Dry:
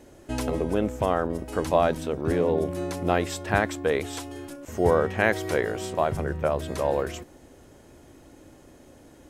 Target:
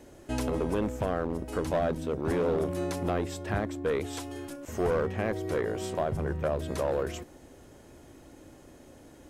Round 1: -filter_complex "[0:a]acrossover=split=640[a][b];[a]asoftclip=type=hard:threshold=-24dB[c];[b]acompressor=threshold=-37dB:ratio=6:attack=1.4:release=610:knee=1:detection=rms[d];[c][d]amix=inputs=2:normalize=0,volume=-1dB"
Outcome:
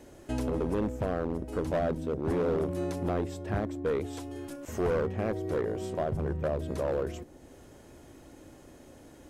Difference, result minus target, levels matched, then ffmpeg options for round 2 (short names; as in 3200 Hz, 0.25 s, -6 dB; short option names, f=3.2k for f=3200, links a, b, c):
compressor: peak gain reduction +7 dB
-filter_complex "[0:a]acrossover=split=640[a][b];[a]asoftclip=type=hard:threshold=-24dB[c];[b]acompressor=threshold=-28.5dB:ratio=6:attack=1.4:release=610:knee=1:detection=rms[d];[c][d]amix=inputs=2:normalize=0,volume=-1dB"